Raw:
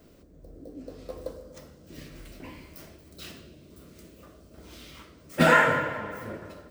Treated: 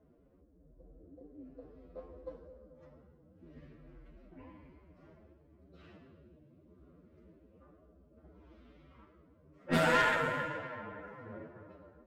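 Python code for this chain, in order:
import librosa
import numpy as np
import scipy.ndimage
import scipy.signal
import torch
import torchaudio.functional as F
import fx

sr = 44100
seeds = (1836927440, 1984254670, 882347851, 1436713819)

y = fx.env_lowpass(x, sr, base_hz=1100.0, full_db=-19.5)
y = fx.stretch_vocoder(y, sr, factor=1.8)
y = fx.tube_stage(y, sr, drive_db=14.0, bias=0.7)
y = y * 10.0 ** (-5.0 / 20.0)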